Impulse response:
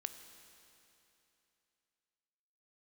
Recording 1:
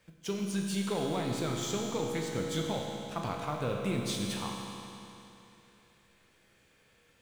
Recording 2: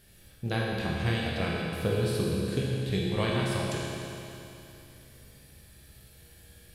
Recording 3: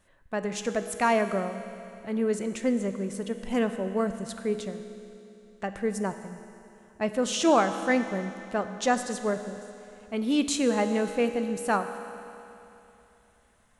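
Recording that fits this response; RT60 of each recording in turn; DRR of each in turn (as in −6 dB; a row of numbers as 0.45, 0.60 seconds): 3; 3.0, 3.0, 3.0 seconds; 0.0, −4.5, 8.0 decibels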